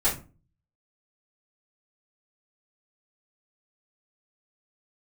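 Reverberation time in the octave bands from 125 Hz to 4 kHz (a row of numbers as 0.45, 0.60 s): 0.70, 0.50, 0.35, 0.35, 0.25, 0.20 s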